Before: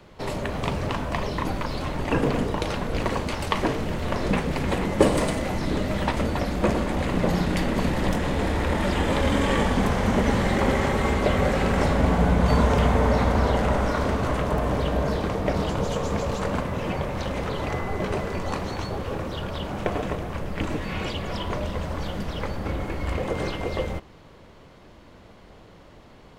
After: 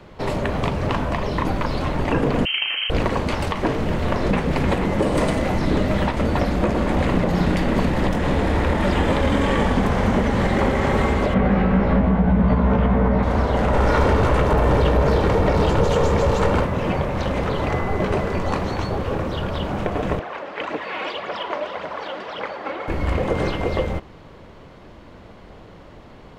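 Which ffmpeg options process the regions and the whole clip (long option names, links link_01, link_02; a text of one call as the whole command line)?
ffmpeg -i in.wav -filter_complex "[0:a]asettb=1/sr,asplit=3[link_01][link_02][link_03];[link_01]atrim=end=2.454[link_04];[link_02]atrim=start=2.45:end=2.9,asetpts=PTS-STARTPTS,afade=type=in:duration=0.004:curve=qsin,afade=type=out:start_time=0.446:duration=0.004:curve=qsin,highshelf=frequency=2200:gain=-11.5,lowpass=frequency=2700:width_type=q:width=0.5098,lowpass=frequency=2700:width_type=q:width=0.6013,lowpass=frequency=2700:width_type=q:width=0.9,lowpass=frequency=2700:width_type=q:width=2.563,afreqshift=-3200,highpass=frequency=180:poles=1[link_05];[link_03]atrim=start=2.896[link_06];[link_04][link_05]acrossfade=duration=0.004:curve1=hsin:curve2=qsin[link_07];[link_07][link_06]acrossfade=duration=0.004:curve1=qsin:curve2=hsin,asettb=1/sr,asplit=3[link_08][link_09][link_10];[link_08]atrim=end=11.344[link_11];[link_09]atrim=start=11.34:end=13.23,asetpts=PTS-STARTPTS,afade=type=in:duration=0.004:curve=qsin,afade=type=out:start_time=1.886:duration=0.004:curve=qsin,lowpass=2500,equalizer=frequency=200:width_type=o:width=0.23:gain=14,asplit=2[link_12][link_13];[link_13]adelay=16,volume=-2.5dB[link_14];[link_12][link_14]amix=inputs=2:normalize=0,atrim=end_sample=83349[link_15];[link_10]atrim=start=13.226[link_16];[link_11][link_15]acrossfade=duration=0.004:curve1=hsin:curve2=qsin[link_17];[link_17][link_16]acrossfade=duration=0.004:curve1=qsin:curve2=hsin,asettb=1/sr,asplit=3[link_18][link_19][link_20];[link_18]atrim=end=13.734[link_21];[link_19]atrim=start=13.73:end=16.65,asetpts=PTS-STARTPTS,afade=type=in:duration=0.004:curve=qsin,afade=type=out:start_time=2.916:duration=0.004:curve=qsin,aeval=exprs='(tanh(11.2*val(0)+0.2)-tanh(0.2))/11.2':channel_layout=same,aecho=1:1:2.2:0.3,atrim=end_sample=128772,acontrast=32[link_22];[link_20]atrim=start=16.646[link_23];[link_21][link_22]acrossfade=duration=0.004:curve1=hsin:curve2=qsin[link_24];[link_24][link_23]acrossfade=duration=0.004:curve1=qsin:curve2=hsin,asettb=1/sr,asplit=3[link_25][link_26][link_27];[link_25]atrim=end=20.194[link_28];[link_26]atrim=start=20.19:end=22.88,asetpts=PTS-STARTPTS,afade=type=in:duration=0.004:curve=qsin,afade=type=out:start_time=2.686:duration=0.004:curve=qsin,highpass=530,lowpass=4000,aphaser=in_gain=1:out_gain=1:delay=3.9:decay=0.46:speed=1.8:type=triangular[link_29];[link_27]atrim=start=22.876[link_30];[link_28][link_29]acrossfade=duration=0.004:curve1=hsin:curve2=qsin[link_31];[link_31][link_30]acrossfade=duration=0.004:curve1=qsin:curve2=hsin,highshelf=frequency=4500:gain=-8.5,alimiter=limit=-15dB:level=0:latency=1:release=239,volume=6dB" out.wav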